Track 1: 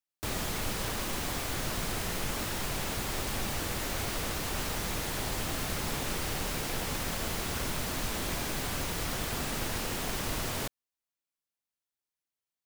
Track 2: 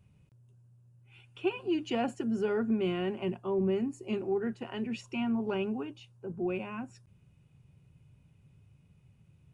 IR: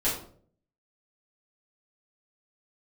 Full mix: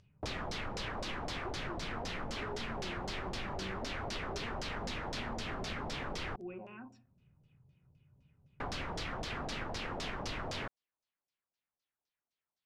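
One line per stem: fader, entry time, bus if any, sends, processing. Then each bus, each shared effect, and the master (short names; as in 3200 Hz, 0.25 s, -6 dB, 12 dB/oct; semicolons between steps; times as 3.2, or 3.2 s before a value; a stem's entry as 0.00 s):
-0.5 dB, 0.00 s, muted 6.36–8.6, no send, dry
-14.0 dB, 0.00 s, send -15.5 dB, upward compressor, threshold -47 dBFS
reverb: on, RT60 0.55 s, pre-delay 4 ms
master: LFO low-pass saw down 3.9 Hz 590–5800 Hz; compressor, threshold -36 dBFS, peak gain reduction 7.5 dB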